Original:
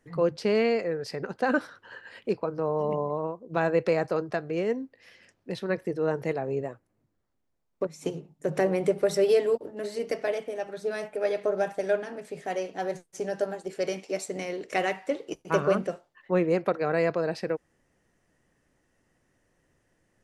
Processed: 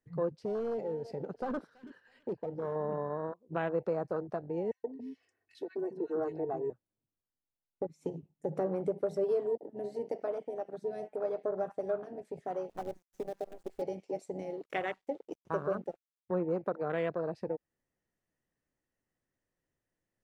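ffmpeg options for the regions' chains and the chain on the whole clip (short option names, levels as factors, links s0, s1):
-filter_complex "[0:a]asettb=1/sr,asplit=3[s0][s1][s2];[s0]atrim=end=0.394[s3];[s1]atrim=start=0.39:end=2.76,asetpts=PTS-STARTPTS,afade=t=in:d=0.004:c=qsin,afade=t=out:st=2.366:d=0.004:c=qsin,asoftclip=type=hard:threshold=0.0531,aecho=1:1:329|658|987:0.188|0.0509|0.0137,atrim=end_sample=104517[s4];[s2]atrim=start=2.756[s5];[s3][s4]acrossfade=d=0.004:c1=hsin:c2=qsin[s6];[s6][s5]acrossfade=d=0.004:c1=qsin:c2=hsin,asettb=1/sr,asplit=3[s7][s8][s9];[s7]atrim=end=4.714[s10];[s8]atrim=start=4.71:end=6.7,asetpts=PTS-STARTPTS,afade=t=in:d=0.004:c=qsin,afade=t=out:st=1.986:d=0.004:c=qsin,highpass=54,aecho=1:1:2.7:0.78,atrim=end_sample=87759,acrossover=split=270|1600[s11][s12][s13];[s12]adelay=130[s14];[s11]adelay=280[s15];[s15][s14][s13]amix=inputs=3:normalize=0,atrim=end_sample=87759[s16];[s9]atrim=start=6.696[s17];[s10][s16]acrossfade=d=0.004:c1=hsin:c2=qsin[s18];[s18][s17]acrossfade=d=0.004:c1=qsin:c2=hsin,asettb=1/sr,asplit=3[s19][s20][s21];[s19]atrim=end=12.694[s22];[s20]atrim=start=12.69:end=13.82,asetpts=PTS-STARTPTS,afade=t=in:d=0.004:c=qsin,afade=t=out:st=1.126:d=0.004:c=qsin,acrossover=split=310|2000[s23][s24][s25];[s23]acompressor=threshold=0.00631:ratio=4[s26];[s24]acompressor=threshold=0.0282:ratio=4[s27];[s25]acompressor=threshold=0.00251:ratio=4[s28];[s26][s27][s28]amix=inputs=3:normalize=0,acrusher=bits=6:dc=4:mix=0:aa=0.000001[s29];[s21]atrim=start=13.816[s30];[s22][s29]acrossfade=d=0.004:c1=hsin:c2=qsin[s31];[s31][s30]acrossfade=d=0.004:c1=qsin:c2=hsin,asettb=1/sr,asplit=3[s32][s33][s34];[s32]atrim=end=14.504[s35];[s33]atrim=start=14.5:end=16.31,asetpts=PTS-STARTPTS,afade=t=in:d=0.004:c=qsin,afade=t=out:st=1.806:d=0.004:c=qsin,asubboost=boost=10.5:cutoff=79,aeval=exprs='sgn(val(0))*max(abs(val(0))-0.00501,0)':c=same[s36];[s34]atrim=start=16.306[s37];[s35][s36]acrossfade=d=0.004:c1=hsin:c2=qsin[s38];[s38][s37]acrossfade=d=0.004:c1=qsin:c2=hsin,afwtdn=0.0282,acompressor=threshold=0.0126:ratio=1.5,volume=0.841"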